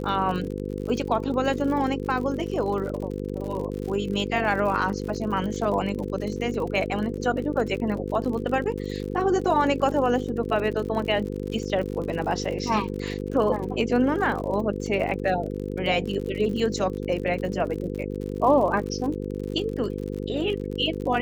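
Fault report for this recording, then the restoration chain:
buzz 50 Hz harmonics 10 -31 dBFS
crackle 54 per s -32 dBFS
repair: de-click; de-hum 50 Hz, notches 10

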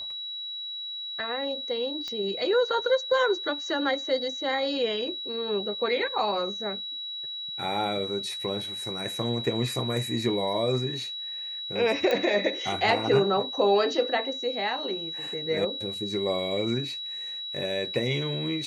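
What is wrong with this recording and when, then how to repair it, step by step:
whine 3.9 kHz -33 dBFS
2.08 s: pop -21 dBFS
12.11 s: pop -13 dBFS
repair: de-click; band-stop 3.9 kHz, Q 30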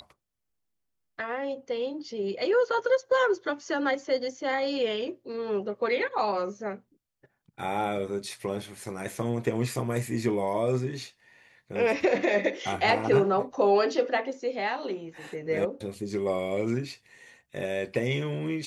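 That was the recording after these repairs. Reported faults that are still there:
2.08 s: pop

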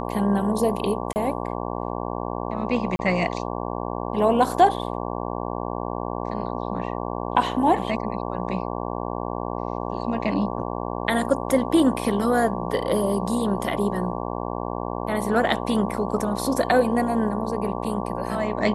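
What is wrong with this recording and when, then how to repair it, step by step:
buzz 60 Hz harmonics 19 -29 dBFS
1.13–1.16 s: dropout 29 ms
2.96–2.99 s: dropout 31 ms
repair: de-hum 60 Hz, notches 19; interpolate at 1.13 s, 29 ms; interpolate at 2.96 s, 31 ms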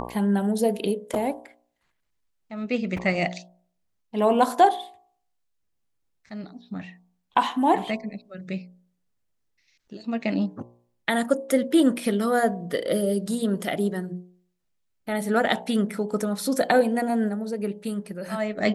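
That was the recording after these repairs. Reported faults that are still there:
nothing left

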